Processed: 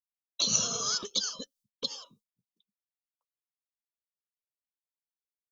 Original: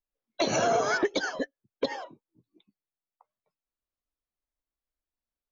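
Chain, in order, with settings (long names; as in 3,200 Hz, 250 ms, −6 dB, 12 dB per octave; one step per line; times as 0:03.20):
downward expander −52 dBFS
drawn EQ curve 140 Hz 0 dB, 210 Hz +3 dB, 330 Hz −17 dB, 470 Hz −6 dB, 750 Hz −20 dB, 1,200 Hz +2 dB, 1,900 Hz −24 dB, 3,000 Hz +8 dB, 5,100 Hz +15 dB
level −5.5 dB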